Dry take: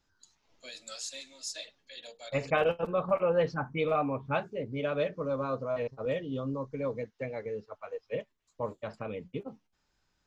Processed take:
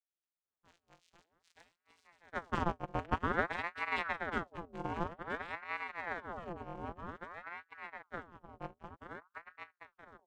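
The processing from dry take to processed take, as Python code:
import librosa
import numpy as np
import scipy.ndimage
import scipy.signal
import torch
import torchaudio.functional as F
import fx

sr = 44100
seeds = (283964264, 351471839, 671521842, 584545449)

p1 = scipy.signal.sosfilt(scipy.signal.butter(2, 3100.0, 'lowpass', fs=sr, output='sos'), x)
p2 = fx.low_shelf(p1, sr, hz=290.0, db=-12.0)
p3 = fx.hum_notches(p2, sr, base_hz=60, count=6)
p4 = fx.vocoder(p3, sr, bands=4, carrier='square', carrier_hz=86.1)
p5 = fx.power_curve(p4, sr, exponent=1.4)
p6 = p5 + fx.echo_single(p5, sr, ms=974, db=-6.0, dry=0)
p7 = fx.ring_lfo(p6, sr, carrier_hz=930.0, swing_pct=70, hz=0.52)
y = p7 * librosa.db_to_amplitude(2.5)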